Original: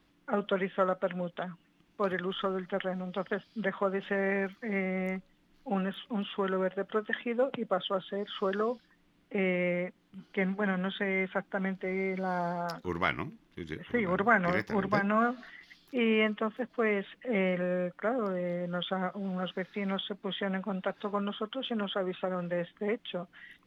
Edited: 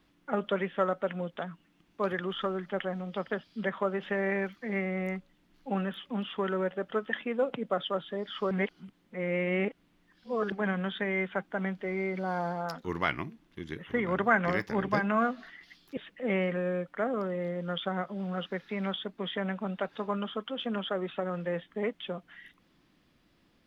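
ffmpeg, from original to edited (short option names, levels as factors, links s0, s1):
-filter_complex "[0:a]asplit=4[s0][s1][s2][s3];[s0]atrim=end=8.512[s4];[s1]atrim=start=8.508:end=10.522,asetpts=PTS-STARTPTS,areverse[s5];[s2]atrim=start=10.518:end=15.972[s6];[s3]atrim=start=17.018[s7];[s4][s5]acrossfade=d=0.004:c1=hsin:c2=hsin[s8];[s8][s6]acrossfade=d=0.004:c1=hsin:c2=hsin[s9];[s9][s7]acrossfade=d=0.004:c1=hsin:c2=hsin"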